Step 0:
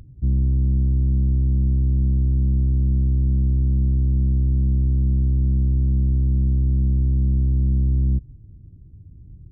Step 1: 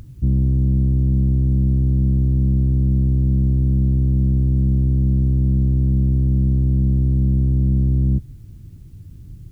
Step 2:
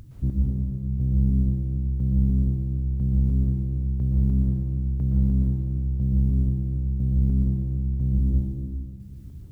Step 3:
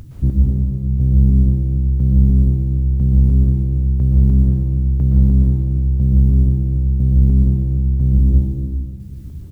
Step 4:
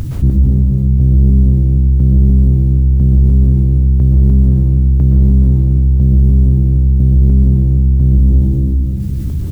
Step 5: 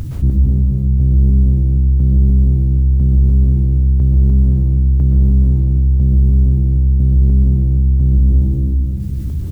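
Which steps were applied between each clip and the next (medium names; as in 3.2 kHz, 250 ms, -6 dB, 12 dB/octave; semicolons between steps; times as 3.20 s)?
peaking EQ 64 Hz -6 dB 0.51 oct; word length cut 12-bit, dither triangular; trim +6 dB
square tremolo 1 Hz, depth 65%, duty 30%; plate-style reverb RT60 2.2 s, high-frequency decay 0.8×, pre-delay 105 ms, DRR -4 dB; trim -6 dB
doubling 13 ms -13.5 dB; trim +8.5 dB
saturation -4 dBFS, distortion -22 dB; level flattener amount 50%; trim +3.5 dB
peaking EQ 69 Hz +3 dB; trim -4.5 dB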